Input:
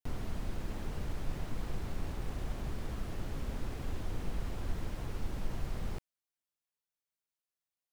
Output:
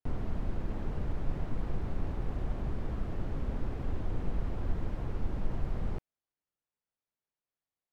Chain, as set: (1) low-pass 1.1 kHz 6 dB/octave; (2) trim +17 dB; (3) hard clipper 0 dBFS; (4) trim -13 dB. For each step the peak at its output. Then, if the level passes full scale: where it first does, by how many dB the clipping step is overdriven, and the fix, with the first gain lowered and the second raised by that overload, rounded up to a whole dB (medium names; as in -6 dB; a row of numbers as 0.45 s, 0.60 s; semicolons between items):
-22.0 dBFS, -5.0 dBFS, -5.0 dBFS, -18.0 dBFS; nothing clips